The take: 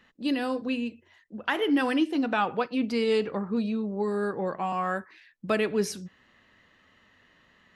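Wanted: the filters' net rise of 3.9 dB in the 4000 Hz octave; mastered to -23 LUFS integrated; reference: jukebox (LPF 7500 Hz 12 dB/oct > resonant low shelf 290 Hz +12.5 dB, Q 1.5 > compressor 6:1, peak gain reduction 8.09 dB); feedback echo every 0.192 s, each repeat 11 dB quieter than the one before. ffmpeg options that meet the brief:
-af "lowpass=7.5k,lowshelf=f=290:t=q:w=1.5:g=12.5,equalizer=f=4k:t=o:g=6,aecho=1:1:192|384|576:0.282|0.0789|0.0221,acompressor=threshold=-20dB:ratio=6,volume=2dB"

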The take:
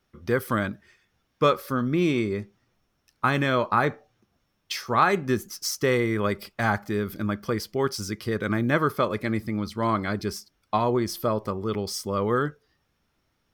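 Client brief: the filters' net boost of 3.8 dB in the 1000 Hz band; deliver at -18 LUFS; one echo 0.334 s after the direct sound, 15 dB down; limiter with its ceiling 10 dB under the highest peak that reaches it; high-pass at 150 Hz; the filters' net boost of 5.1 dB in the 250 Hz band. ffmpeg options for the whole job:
-af "highpass=150,equalizer=f=250:t=o:g=7,equalizer=f=1k:t=o:g=4.5,alimiter=limit=-13dB:level=0:latency=1,aecho=1:1:334:0.178,volume=7.5dB"

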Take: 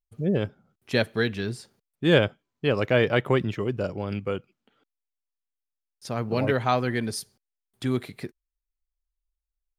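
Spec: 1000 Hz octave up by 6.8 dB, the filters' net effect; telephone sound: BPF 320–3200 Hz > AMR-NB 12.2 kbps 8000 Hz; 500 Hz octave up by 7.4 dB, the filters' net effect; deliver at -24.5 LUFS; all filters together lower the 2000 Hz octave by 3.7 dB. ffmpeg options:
-af "highpass=320,lowpass=3.2k,equalizer=f=500:t=o:g=8,equalizer=f=1k:t=o:g=8.5,equalizer=f=2k:t=o:g=-8.5,volume=-2.5dB" -ar 8000 -c:a libopencore_amrnb -b:a 12200

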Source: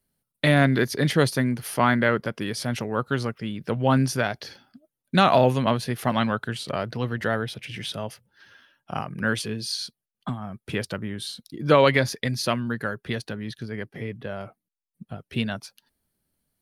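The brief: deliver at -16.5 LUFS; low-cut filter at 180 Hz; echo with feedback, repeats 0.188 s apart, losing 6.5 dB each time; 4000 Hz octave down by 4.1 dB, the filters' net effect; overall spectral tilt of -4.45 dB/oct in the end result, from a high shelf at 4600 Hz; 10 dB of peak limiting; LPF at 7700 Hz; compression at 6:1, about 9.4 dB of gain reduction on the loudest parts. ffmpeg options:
-af "highpass=180,lowpass=7.7k,equalizer=f=4k:t=o:g=-8,highshelf=f=4.6k:g=6,acompressor=threshold=-23dB:ratio=6,alimiter=limit=-20dB:level=0:latency=1,aecho=1:1:188|376|564|752|940|1128:0.473|0.222|0.105|0.0491|0.0231|0.0109,volume=16dB"

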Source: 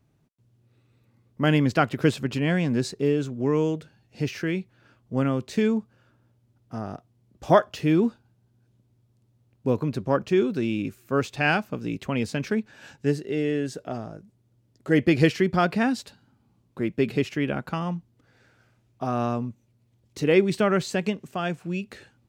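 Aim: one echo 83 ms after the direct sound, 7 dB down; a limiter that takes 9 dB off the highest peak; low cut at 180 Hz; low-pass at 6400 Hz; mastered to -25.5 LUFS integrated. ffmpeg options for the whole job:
-af "highpass=180,lowpass=6.4k,alimiter=limit=-13dB:level=0:latency=1,aecho=1:1:83:0.447,volume=1.5dB"

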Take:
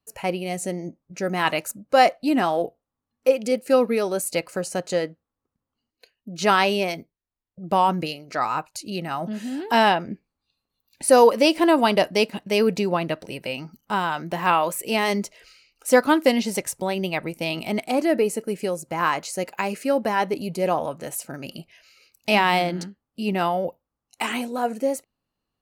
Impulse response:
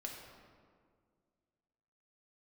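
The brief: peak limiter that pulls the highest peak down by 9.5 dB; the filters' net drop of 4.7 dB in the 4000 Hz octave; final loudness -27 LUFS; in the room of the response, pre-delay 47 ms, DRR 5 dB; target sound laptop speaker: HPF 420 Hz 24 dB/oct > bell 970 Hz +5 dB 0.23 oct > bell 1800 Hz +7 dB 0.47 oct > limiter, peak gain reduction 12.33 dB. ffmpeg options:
-filter_complex "[0:a]equalizer=f=4k:t=o:g=-8,alimiter=limit=-13.5dB:level=0:latency=1,asplit=2[a][b];[1:a]atrim=start_sample=2205,adelay=47[c];[b][c]afir=irnorm=-1:irlink=0,volume=-3dB[d];[a][d]amix=inputs=2:normalize=0,highpass=f=420:w=0.5412,highpass=f=420:w=1.3066,equalizer=f=970:t=o:w=0.23:g=5,equalizer=f=1.8k:t=o:w=0.47:g=7,volume=3dB,alimiter=limit=-16.5dB:level=0:latency=1"

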